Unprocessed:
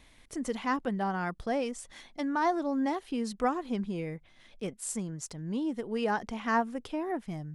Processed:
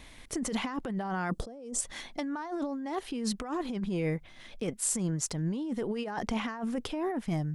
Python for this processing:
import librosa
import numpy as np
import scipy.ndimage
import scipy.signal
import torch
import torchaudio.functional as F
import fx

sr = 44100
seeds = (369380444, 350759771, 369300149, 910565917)

y = fx.graphic_eq_10(x, sr, hz=(250, 500, 2000, 8000), db=(9, 10, -7, 7), at=(1.31, 1.81))
y = fx.over_compress(y, sr, threshold_db=-36.0, ratio=-1.0)
y = y * 10.0 ** (2.5 / 20.0)